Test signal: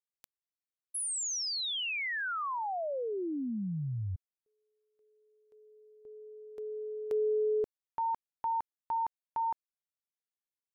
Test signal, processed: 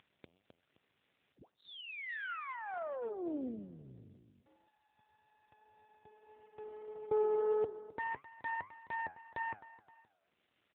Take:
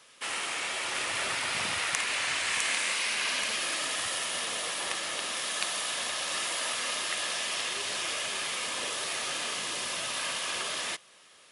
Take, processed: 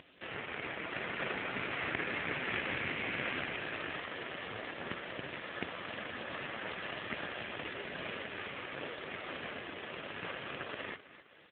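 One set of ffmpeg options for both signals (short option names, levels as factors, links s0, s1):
-af "highpass=f=220:w=0.5412,highpass=f=220:w=1.3066,aresample=11025,aeval=exprs='clip(val(0),-1,0.0473)':c=same,aresample=44100,aeval=exprs='0.2*(cos(1*acos(clip(val(0)/0.2,-1,1)))-cos(1*PI/2))+0.01*(cos(2*acos(clip(val(0)/0.2,-1,1)))-cos(2*PI/2))+0.00562*(cos(6*acos(clip(val(0)/0.2,-1,1)))-cos(6*PI/2))+0.02*(cos(7*acos(clip(val(0)/0.2,-1,1)))-cos(7*PI/2))+0.02*(cos(8*acos(clip(val(0)/0.2,-1,1)))-cos(8*PI/2))':c=same,flanger=delay=6.5:depth=5.7:regen=83:speed=1.7:shape=triangular,lowpass=1800,aecho=1:1:261|522:0.158|0.0285,aeval=exprs='abs(val(0))':c=same,acompressor=mode=upward:threshold=0.002:ratio=2.5:attack=20:release=142:knee=2.83:detection=peak,equalizer=f=970:w=1.4:g=-8,volume=3.98" -ar 8000 -c:a libopencore_amrnb -b:a 7950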